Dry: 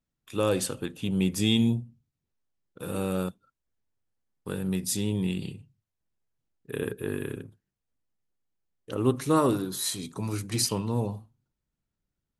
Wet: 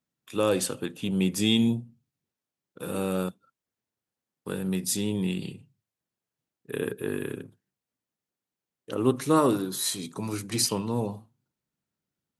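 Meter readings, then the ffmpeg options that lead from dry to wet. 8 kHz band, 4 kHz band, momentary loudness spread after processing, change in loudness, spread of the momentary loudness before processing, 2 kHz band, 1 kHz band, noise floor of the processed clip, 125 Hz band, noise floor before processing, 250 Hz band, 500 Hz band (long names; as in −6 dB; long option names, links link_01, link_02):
+1.5 dB, +1.5 dB, 14 LU, +1.0 dB, 14 LU, +1.5 dB, +1.5 dB, below −85 dBFS, −2.5 dB, below −85 dBFS, +1.0 dB, +1.5 dB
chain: -af "highpass=140,volume=1.5dB"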